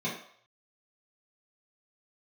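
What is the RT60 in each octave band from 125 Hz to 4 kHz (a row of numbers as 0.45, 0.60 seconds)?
0.40, 0.35, 0.60, 0.65, 0.60, 0.60 seconds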